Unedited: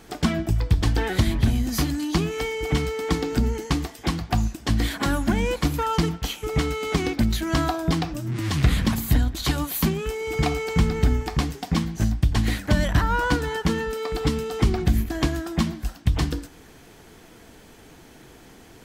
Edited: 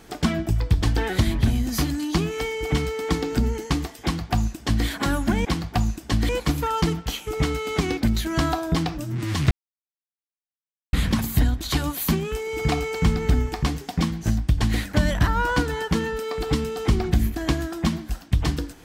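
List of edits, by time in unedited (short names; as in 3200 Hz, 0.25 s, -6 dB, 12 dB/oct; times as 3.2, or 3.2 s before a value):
4.02–4.86 copy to 5.45
8.67 insert silence 1.42 s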